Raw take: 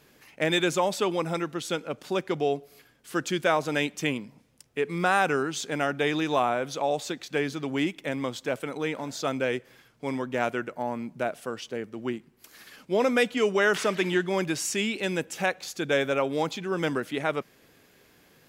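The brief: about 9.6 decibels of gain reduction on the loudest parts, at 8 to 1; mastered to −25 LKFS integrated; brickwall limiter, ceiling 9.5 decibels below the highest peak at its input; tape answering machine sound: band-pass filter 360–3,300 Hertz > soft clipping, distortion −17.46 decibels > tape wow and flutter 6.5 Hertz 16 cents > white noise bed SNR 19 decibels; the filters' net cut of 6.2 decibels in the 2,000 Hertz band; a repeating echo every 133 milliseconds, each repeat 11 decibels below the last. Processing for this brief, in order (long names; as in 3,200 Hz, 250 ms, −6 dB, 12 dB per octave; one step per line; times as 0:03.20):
parametric band 2,000 Hz −8 dB
downward compressor 8 to 1, threshold −30 dBFS
brickwall limiter −27.5 dBFS
band-pass filter 360–3,300 Hz
repeating echo 133 ms, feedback 28%, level −11 dB
soft clipping −32.5 dBFS
tape wow and flutter 6.5 Hz 16 cents
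white noise bed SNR 19 dB
level +17 dB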